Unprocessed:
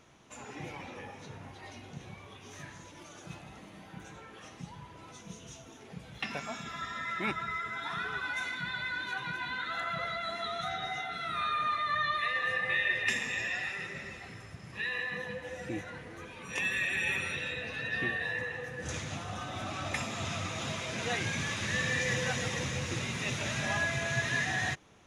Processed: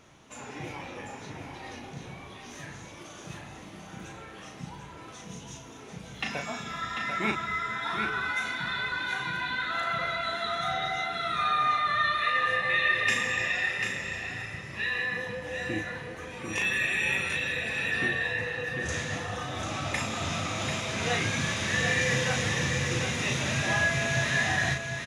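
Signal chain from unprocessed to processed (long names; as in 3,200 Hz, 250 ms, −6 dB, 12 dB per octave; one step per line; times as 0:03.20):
double-tracking delay 37 ms −5 dB
single-tap delay 743 ms −6.5 dB
level +3 dB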